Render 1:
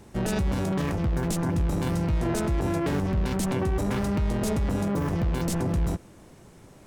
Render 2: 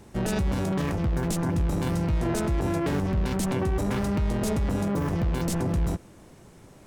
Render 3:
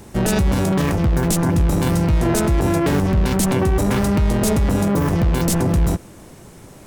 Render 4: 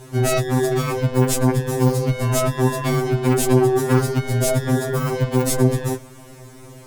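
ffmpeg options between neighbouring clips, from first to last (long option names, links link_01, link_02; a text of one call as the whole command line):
ffmpeg -i in.wav -af anull out.wav
ffmpeg -i in.wav -af "highshelf=frequency=8900:gain=7.5,volume=8.5dB" out.wav
ffmpeg -i in.wav -af "afftfilt=real='re*2.45*eq(mod(b,6),0)':imag='im*2.45*eq(mod(b,6),0)':win_size=2048:overlap=0.75,volume=2.5dB" out.wav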